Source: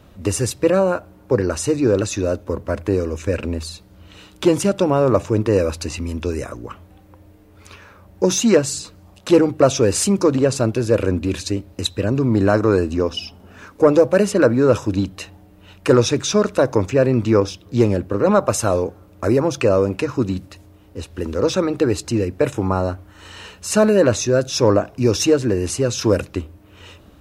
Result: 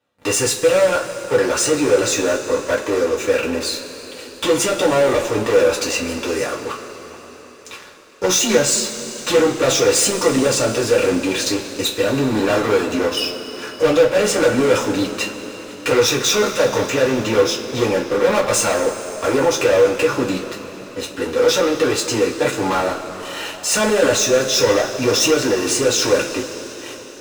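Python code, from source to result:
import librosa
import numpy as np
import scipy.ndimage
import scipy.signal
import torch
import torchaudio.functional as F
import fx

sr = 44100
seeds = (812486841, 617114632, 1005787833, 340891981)

y = fx.weighting(x, sr, curve='A')
y = fx.leveller(y, sr, passes=5)
y = fx.rev_double_slope(y, sr, seeds[0], early_s=0.2, late_s=4.6, knee_db=-20, drr_db=-4.5)
y = F.gain(torch.from_numpy(y), -13.5).numpy()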